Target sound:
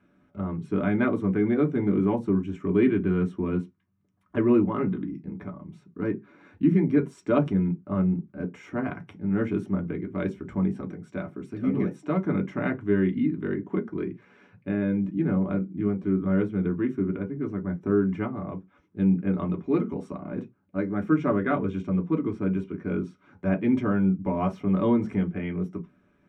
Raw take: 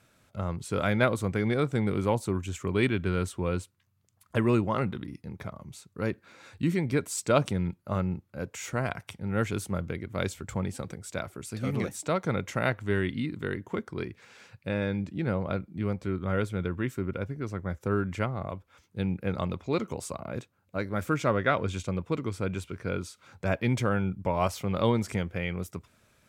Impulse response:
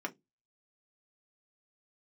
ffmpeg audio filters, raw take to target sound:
-filter_complex "[0:a]aemphasis=mode=reproduction:type=riaa[link_01];[1:a]atrim=start_sample=2205,atrim=end_sample=6174[link_02];[link_01][link_02]afir=irnorm=-1:irlink=0,volume=-5dB"

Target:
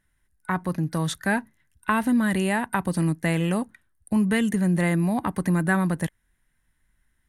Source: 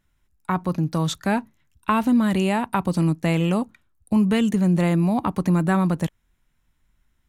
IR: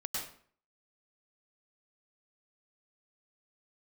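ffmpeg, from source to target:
-af "superequalizer=11b=2.51:16b=2.82,volume=-3dB"

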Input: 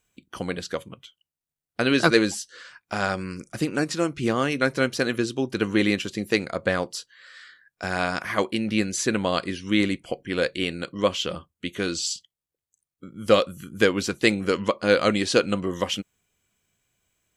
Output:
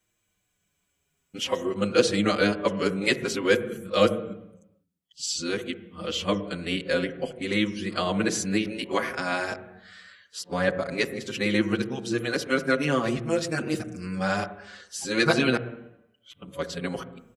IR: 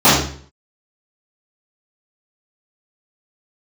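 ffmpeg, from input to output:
-filter_complex "[0:a]areverse,asplit=2[link_01][link_02];[1:a]atrim=start_sample=2205,asetrate=25137,aresample=44100,lowpass=2000[link_03];[link_02][link_03]afir=irnorm=-1:irlink=0,volume=-43.5dB[link_04];[link_01][link_04]amix=inputs=2:normalize=0,asplit=2[link_05][link_06];[link_06]adelay=6,afreqshift=-0.51[link_07];[link_05][link_07]amix=inputs=2:normalize=1,volume=1dB"

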